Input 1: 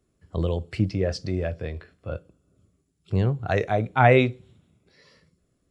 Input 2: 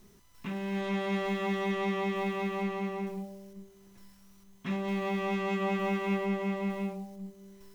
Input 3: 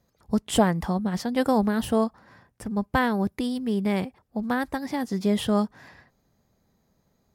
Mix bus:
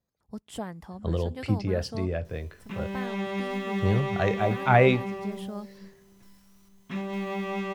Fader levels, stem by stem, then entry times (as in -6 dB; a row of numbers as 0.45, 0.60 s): -2.5, 0.0, -15.5 dB; 0.70, 2.25, 0.00 s